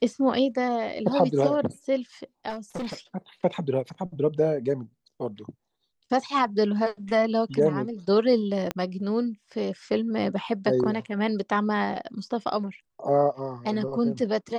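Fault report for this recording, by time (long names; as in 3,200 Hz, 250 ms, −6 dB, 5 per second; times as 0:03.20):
0:02.49–0:02.94: clipping −28 dBFS
0:08.71: click −13 dBFS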